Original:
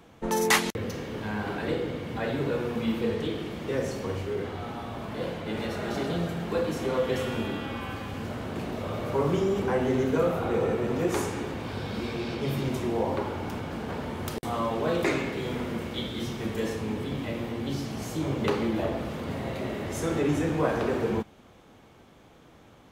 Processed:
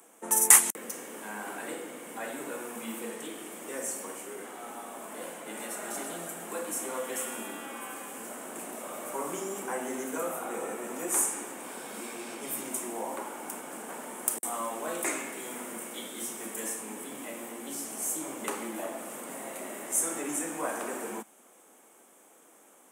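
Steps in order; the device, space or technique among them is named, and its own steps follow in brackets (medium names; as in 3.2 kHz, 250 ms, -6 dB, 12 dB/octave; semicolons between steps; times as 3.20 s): Bessel high-pass 370 Hz, order 6; dynamic bell 440 Hz, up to -8 dB, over -44 dBFS, Q 2.3; budget condenser microphone (high-pass 99 Hz; resonant high shelf 6.2 kHz +13.5 dB, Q 3); trim -2.5 dB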